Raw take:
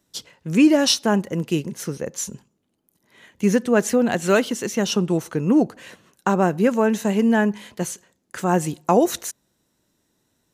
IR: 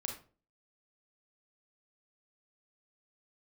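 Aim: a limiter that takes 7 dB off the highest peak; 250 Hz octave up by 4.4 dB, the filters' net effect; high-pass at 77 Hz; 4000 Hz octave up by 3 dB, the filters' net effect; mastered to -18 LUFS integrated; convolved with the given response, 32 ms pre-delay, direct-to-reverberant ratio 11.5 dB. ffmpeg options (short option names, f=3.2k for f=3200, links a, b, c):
-filter_complex "[0:a]highpass=77,equalizer=f=250:t=o:g=5.5,equalizer=f=4k:t=o:g=4,alimiter=limit=-9dB:level=0:latency=1,asplit=2[a][b];[1:a]atrim=start_sample=2205,adelay=32[c];[b][c]afir=irnorm=-1:irlink=0,volume=-11.5dB[d];[a][d]amix=inputs=2:normalize=0,volume=2dB"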